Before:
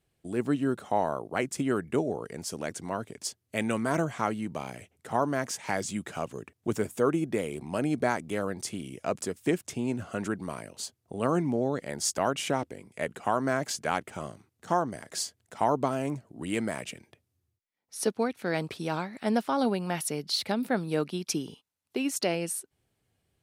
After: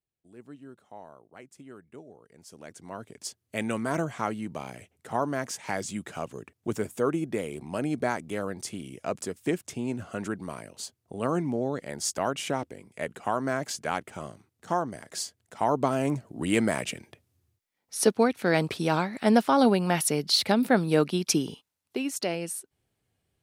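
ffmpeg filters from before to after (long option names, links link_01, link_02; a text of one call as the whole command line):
ffmpeg -i in.wav -af "volume=6dB,afade=type=in:start_time=2.27:duration=0.53:silence=0.316228,afade=type=in:start_time=2.8:duration=0.64:silence=0.398107,afade=type=in:start_time=15.59:duration=0.67:silence=0.446684,afade=type=out:start_time=21.49:duration=0.57:silence=0.421697" out.wav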